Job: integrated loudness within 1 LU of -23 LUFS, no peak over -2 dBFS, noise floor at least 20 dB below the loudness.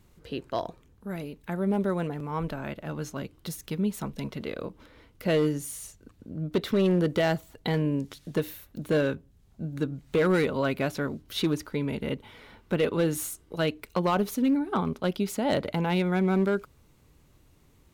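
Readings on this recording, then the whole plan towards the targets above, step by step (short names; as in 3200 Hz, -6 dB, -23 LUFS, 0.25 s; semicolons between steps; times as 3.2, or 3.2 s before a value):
clipped 0.9%; flat tops at -18.0 dBFS; loudness -29.0 LUFS; peak -18.0 dBFS; loudness target -23.0 LUFS
-> clip repair -18 dBFS; gain +6 dB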